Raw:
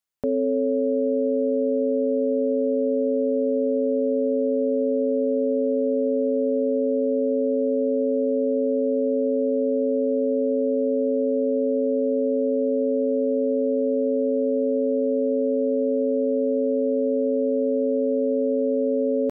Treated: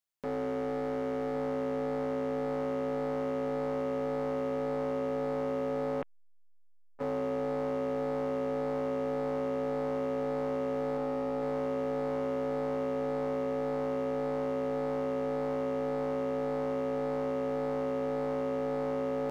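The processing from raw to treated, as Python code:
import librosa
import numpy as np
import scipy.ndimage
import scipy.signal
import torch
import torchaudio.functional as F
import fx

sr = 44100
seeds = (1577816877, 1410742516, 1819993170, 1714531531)

y = fx.peak_eq(x, sr, hz=400.0, db=-6.0, octaves=0.26, at=(10.97, 11.42))
y = np.clip(y, -10.0 ** (-26.0 / 20.0), 10.0 ** (-26.0 / 20.0))
y = fx.echo_feedback(y, sr, ms=1113, feedback_pct=56, wet_db=-14)
y = fx.lpc_vocoder(y, sr, seeds[0], excitation='pitch_kept', order=10, at=(6.02, 6.99))
y = fx.transformer_sat(y, sr, knee_hz=660.0)
y = y * 10.0 ** (-4.0 / 20.0)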